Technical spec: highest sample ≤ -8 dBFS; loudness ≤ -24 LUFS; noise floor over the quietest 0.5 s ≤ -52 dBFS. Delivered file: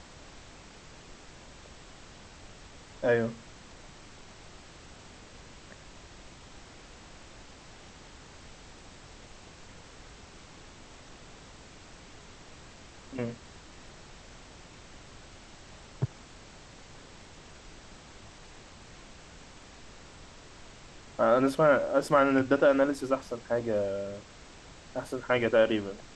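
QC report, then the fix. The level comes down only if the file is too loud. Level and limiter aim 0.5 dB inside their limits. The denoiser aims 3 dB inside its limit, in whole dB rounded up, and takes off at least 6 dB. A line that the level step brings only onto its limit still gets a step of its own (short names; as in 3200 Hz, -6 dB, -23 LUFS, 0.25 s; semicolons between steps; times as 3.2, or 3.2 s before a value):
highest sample -11.0 dBFS: OK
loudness -27.5 LUFS: OK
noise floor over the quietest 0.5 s -50 dBFS: fail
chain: denoiser 6 dB, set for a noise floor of -50 dBFS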